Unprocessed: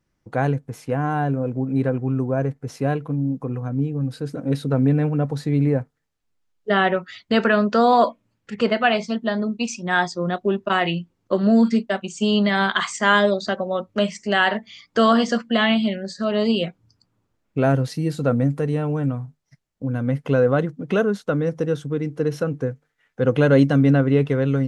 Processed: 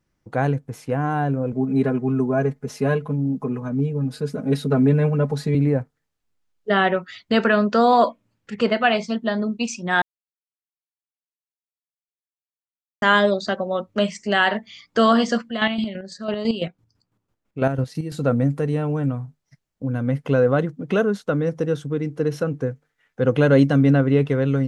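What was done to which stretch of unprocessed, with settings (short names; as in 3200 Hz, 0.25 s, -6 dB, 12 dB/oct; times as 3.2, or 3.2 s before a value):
1.52–5.55 comb 4.8 ms, depth 100%
10.02–13.02 mute
15.45–18.15 chopper 6 Hz, depth 60%, duty 35%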